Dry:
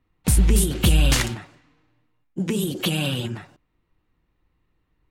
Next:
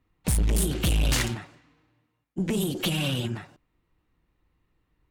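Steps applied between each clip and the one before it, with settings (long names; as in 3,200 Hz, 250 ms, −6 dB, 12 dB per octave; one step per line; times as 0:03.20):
tube saturation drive 19 dB, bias 0.35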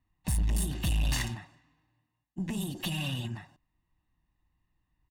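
comb filter 1.1 ms, depth 65%
level −8.5 dB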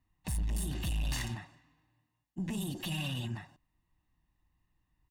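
brickwall limiter −28 dBFS, peak gain reduction 7 dB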